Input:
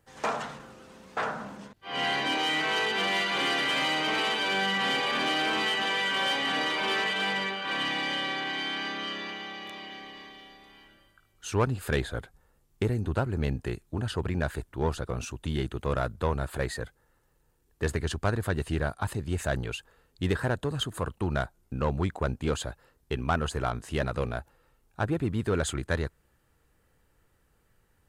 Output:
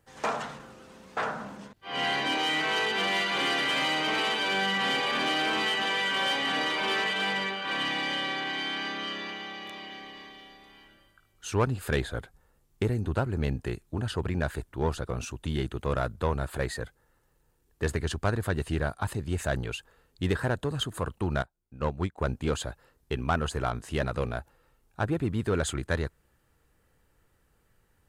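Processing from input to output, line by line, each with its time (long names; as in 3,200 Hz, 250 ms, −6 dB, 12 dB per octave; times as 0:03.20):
0:21.42–0:22.18: expander for the loud parts 2.5 to 1, over −36 dBFS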